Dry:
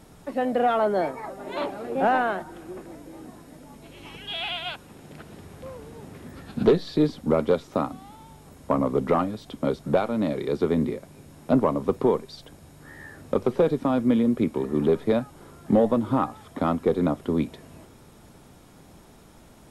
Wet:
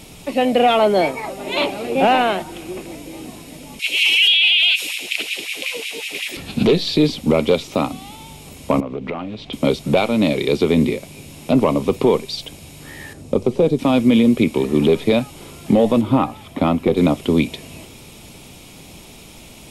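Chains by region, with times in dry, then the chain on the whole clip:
0:03.79–0:06.37: high shelf with overshoot 1,700 Hz +14 dB, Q 1.5 + auto-filter high-pass sine 5.4 Hz 310–2,500 Hz + one half of a high-frequency compander decoder only
0:08.80–0:09.53: low-pass filter 3,000 Hz + downward compressor 3 to 1, threshold −35 dBFS + highs frequency-modulated by the lows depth 0.17 ms
0:13.13–0:13.79: low-pass filter 8,700 Hz + parametric band 2,500 Hz −12 dB 2.7 octaves
0:16.01–0:16.97: parametric band 7,000 Hz −9 dB 2.5 octaves + notch filter 450 Hz, Q 8.2
whole clip: high shelf with overshoot 2,000 Hz +6.5 dB, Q 3; brickwall limiter −14 dBFS; level +8.5 dB

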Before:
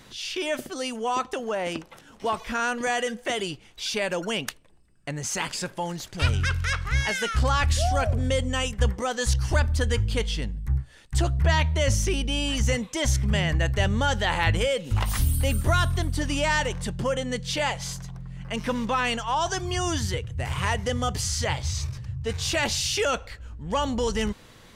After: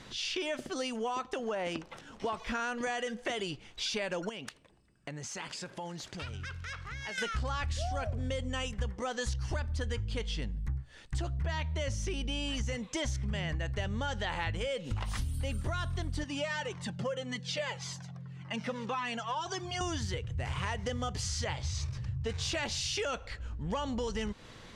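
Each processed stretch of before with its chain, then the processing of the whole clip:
0:04.29–0:07.18: downward compressor 4 to 1, threshold −38 dBFS + high-pass filter 94 Hz 6 dB per octave
0:16.24–0:19.81: high-pass filter 120 Hz 24 dB per octave + high-shelf EQ 11,000 Hz −7.5 dB + flanger whose copies keep moving one way falling 1.8 Hz
whole clip: low-pass filter 7,100 Hz 12 dB per octave; downward compressor 5 to 1, threshold −32 dBFS

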